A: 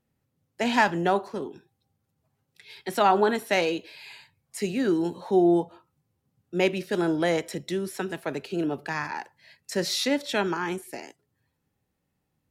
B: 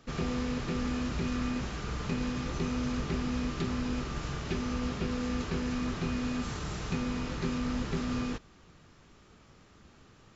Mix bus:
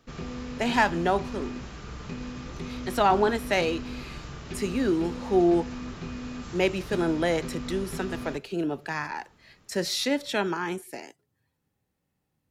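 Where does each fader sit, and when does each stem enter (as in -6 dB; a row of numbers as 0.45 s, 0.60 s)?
-1.0 dB, -4.0 dB; 0.00 s, 0.00 s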